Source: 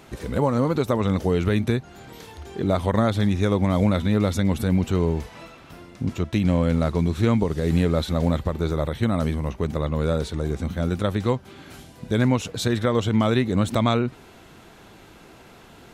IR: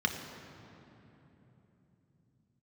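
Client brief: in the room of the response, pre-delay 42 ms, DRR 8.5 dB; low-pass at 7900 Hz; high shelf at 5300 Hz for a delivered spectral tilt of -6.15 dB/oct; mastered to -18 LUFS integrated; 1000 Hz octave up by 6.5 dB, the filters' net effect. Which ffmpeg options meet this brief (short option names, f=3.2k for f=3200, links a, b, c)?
-filter_complex "[0:a]lowpass=7.9k,equalizer=f=1k:t=o:g=8.5,highshelf=f=5.3k:g=-7.5,asplit=2[a][b];[1:a]atrim=start_sample=2205,adelay=42[c];[b][c]afir=irnorm=-1:irlink=0,volume=-16.5dB[d];[a][d]amix=inputs=2:normalize=0,volume=3.5dB"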